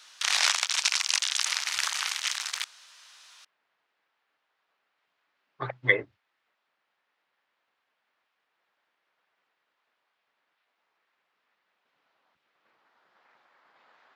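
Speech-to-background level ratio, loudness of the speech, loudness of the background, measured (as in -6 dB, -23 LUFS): -1.5 dB, -27.5 LUFS, -26.0 LUFS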